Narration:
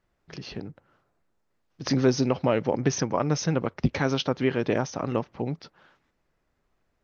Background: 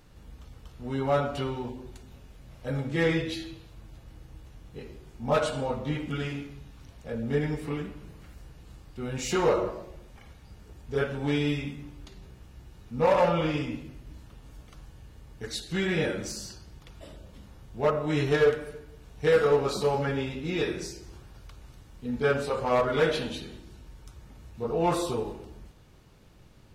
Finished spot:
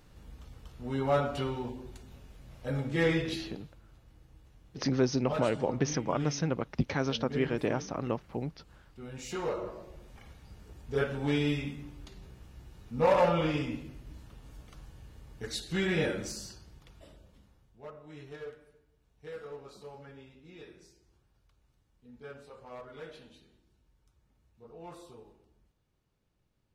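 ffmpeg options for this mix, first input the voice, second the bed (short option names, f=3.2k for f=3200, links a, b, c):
-filter_complex "[0:a]adelay=2950,volume=-5.5dB[a];[1:a]volume=6dB,afade=t=out:st=3.4:d=0.4:silence=0.398107,afade=t=in:st=9.58:d=0.53:silence=0.398107,afade=t=out:st=16.06:d=1.74:silence=0.105925[b];[a][b]amix=inputs=2:normalize=0"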